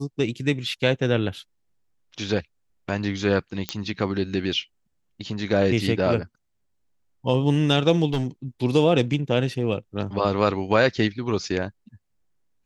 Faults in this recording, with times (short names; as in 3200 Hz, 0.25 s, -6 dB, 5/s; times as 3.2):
3.69 pop -9 dBFS
8.13–8.26 clipped -19.5 dBFS